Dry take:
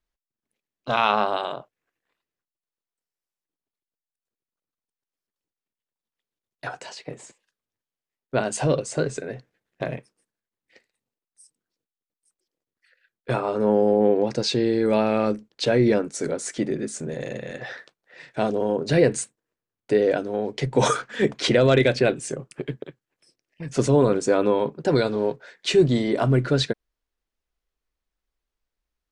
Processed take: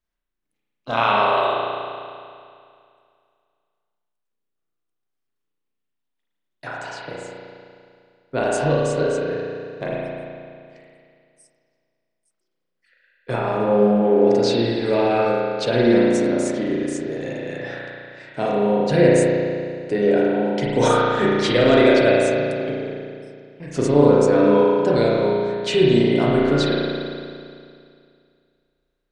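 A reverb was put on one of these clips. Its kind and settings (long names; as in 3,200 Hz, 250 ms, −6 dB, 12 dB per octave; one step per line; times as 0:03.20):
spring reverb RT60 2.3 s, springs 34 ms, chirp 25 ms, DRR −5.5 dB
level −2 dB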